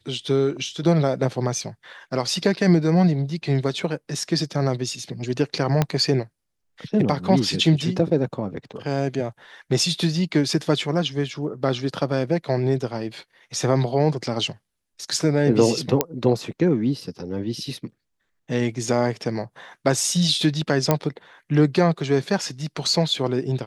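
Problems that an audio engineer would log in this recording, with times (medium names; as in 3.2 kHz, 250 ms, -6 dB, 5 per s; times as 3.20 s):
5.82 s: pop -6 dBFS
16.01 s: pop -2 dBFS
20.91 s: pop -4 dBFS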